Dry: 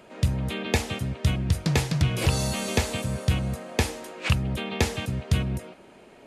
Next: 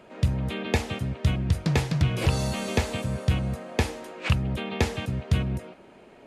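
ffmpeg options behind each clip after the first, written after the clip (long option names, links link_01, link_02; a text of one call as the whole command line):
ffmpeg -i in.wav -af "highshelf=frequency=4600:gain=-8" out.wav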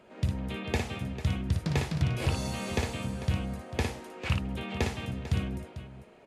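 ffmpeg -i in.wav -af "aecho=1:1:57|446:0.562|0.224,volume=-6dB" out.wav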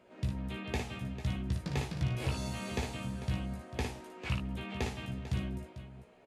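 ffmpeg -i in.wav -filter_complex "[0:a]asplit=2[link_01][link_02];[link_02]adelay=16,volume=-5dB[link_03];[link_01][link_03]amix=inputs=2:normalize=0,volume=-6.5dB" out.wav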